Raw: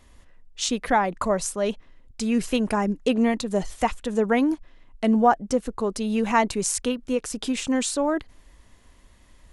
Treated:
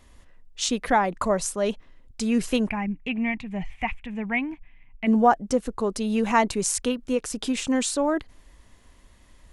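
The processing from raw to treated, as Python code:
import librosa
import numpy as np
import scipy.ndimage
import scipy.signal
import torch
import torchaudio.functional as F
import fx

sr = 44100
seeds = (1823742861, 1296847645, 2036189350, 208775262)

y = fx.curve_eq(x, sr, hz=(170.0, 510.0, 770.0, 1400.0, 2300.0, 4200.0, 11000.0), db=(0, -19, -4, -12, 9, -19, -28), at=(2.68, 5.06), fade=0.02)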